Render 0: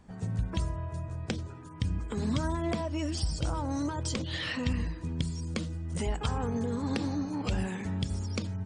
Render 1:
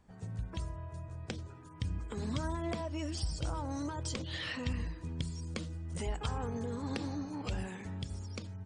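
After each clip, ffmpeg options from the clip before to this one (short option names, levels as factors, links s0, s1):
-af "equalizer=f=210:t=o:w=0.93:g=-3.5,dynaudnorm=f=240:g=11:m=1.41,volume=0.422"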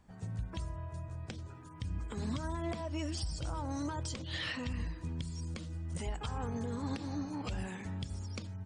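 -af "equalizer=f=440:w=2.7:g=-3.5,alimiter=level_in=1.78:limit=0.0631:level=0:latency=1:release=207,volume=0.562,volume=1.19"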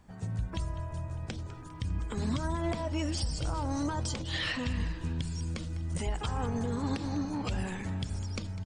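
-filter_complex "[0:a]asplit=7[s0][s1][s2][s3][s4][s5][s6];[s1]adelay=201,afreqshift=-66,volume=0.168[s7];[s2]adelay=402,afreqshift=-132,volume=0.102[s8];[s3]adelay=603,afreqshift=-198,volume=0.0624[s9];[s4]adelay=804,afreqshift=-264,volume=0.038[s10];[s5]adelay=1005,afreqshift=-330,volume=0.0232[s11];[s6]adelay=1206,afreqshift=-396,volume=0.0141[s12];[s0][s7][s8][s9][s10][s11][s12]amix=inputs=7:normalize=0,volume=1.78"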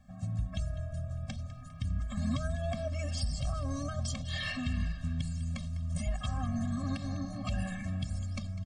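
-af "afftfilt=real='re*eq(mod(floor(b*sr/1024/260),2),0)':imag='im*eq(mod(floor(b*sr/1024/260),2),0)':win_size=1024:overlap=0.75"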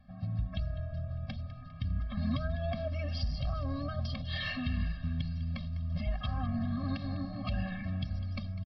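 -af "aresample=11025,aresample=44100"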